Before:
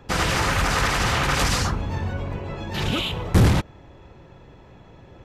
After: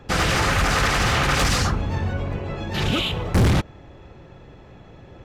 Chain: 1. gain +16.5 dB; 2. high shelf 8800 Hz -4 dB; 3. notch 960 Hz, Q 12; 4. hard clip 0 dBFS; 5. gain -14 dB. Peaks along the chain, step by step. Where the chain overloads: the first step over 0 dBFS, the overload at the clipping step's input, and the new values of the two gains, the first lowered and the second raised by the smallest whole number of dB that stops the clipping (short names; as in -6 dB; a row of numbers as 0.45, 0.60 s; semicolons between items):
+7.0, +7.0, +7.5, 0.0, -14.0 dBFS; step 1, 7.5 dB; step 1 +8.5 dB, step 5 -6 dB